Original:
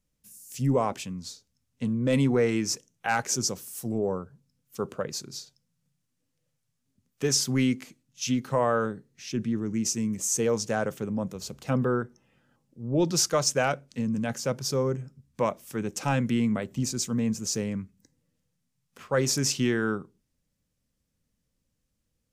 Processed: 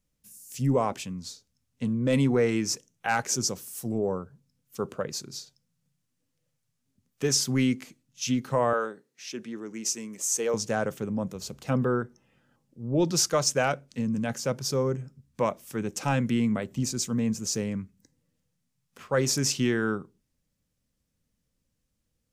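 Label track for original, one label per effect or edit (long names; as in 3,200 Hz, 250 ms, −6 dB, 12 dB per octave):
8.730000	10.540000	high-pass filter 400 Hz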